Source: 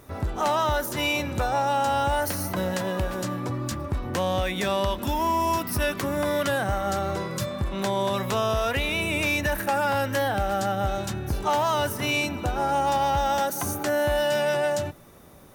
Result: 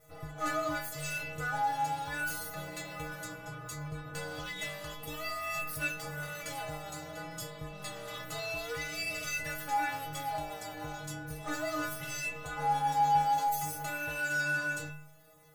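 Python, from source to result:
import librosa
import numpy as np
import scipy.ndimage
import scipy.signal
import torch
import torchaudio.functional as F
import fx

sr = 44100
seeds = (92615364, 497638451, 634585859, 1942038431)

y = fx.lower_of_two(x, sr, delay_ms=1.5)
y = fx.stiff_resonator(y, sr, f0_hz=150.0, decay_s=0.82, stiffness=0.008)
y = F.gain(torch.from_numpy(y), 8.0).numpy()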